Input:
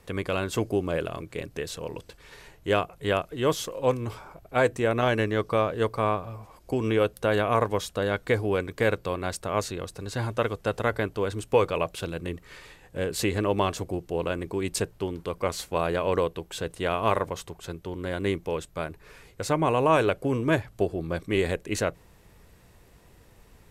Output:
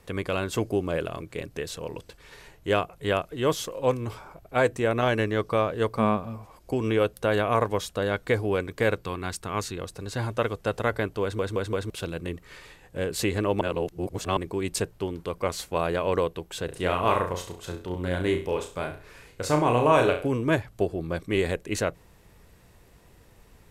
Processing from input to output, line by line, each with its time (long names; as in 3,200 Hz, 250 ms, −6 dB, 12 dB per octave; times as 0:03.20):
0:05.95–0:06.38: parametric band 220 Hz +12.5 dB 0.38 octaves
0:09.02–0:09.78: parametric band 580 Hz −12 dB 0.43 octaves
0:11.22: stutter in place 0.17 s, 4 plays
0:13.61–0:14.37: reverse
0:16.65–0:20.28: flutter between parallel walls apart 5.7 metres, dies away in 0.37 s